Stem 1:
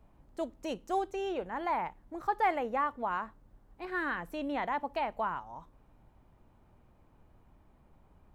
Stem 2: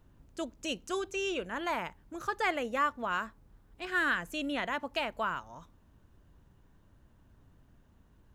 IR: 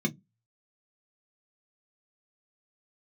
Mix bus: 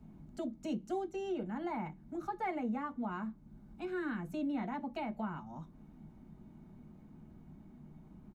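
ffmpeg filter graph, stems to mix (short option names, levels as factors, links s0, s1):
-filter_complex "[0:a]volume=0.891,asplit=3[s0][s1][s2];[s1]volume=0.531[s3];[1:a]adelay=0.5,volume=0.398[s4];[s2]apad=whole_len=367824[s5];[s4][s5]sidechaincompress=threshold=0.01:ratio=8:attack=33:release=266[s6];[2:a]atrim=start_sample=2205[s7];[s3][s7]afir=irnorm=-1:irlink=0[s8];[s0][s6][s8]amix=inputs=3:normalize=0,acompressor=threshold=0.00355:ratio=1.5"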